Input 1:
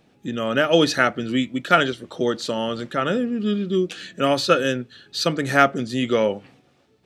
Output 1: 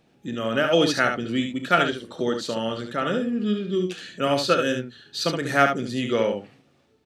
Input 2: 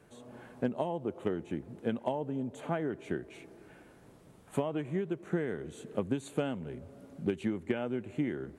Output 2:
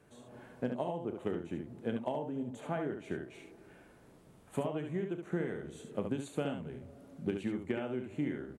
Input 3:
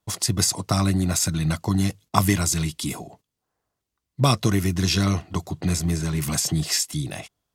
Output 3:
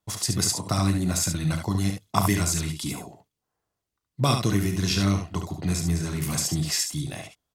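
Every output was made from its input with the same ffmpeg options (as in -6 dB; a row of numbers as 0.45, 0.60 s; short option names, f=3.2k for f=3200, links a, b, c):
-af "aecho=1:1:34|71:0.251|0.501,volume=-3.5dB"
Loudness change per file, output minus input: -2.5, -2.5, -2.5 LU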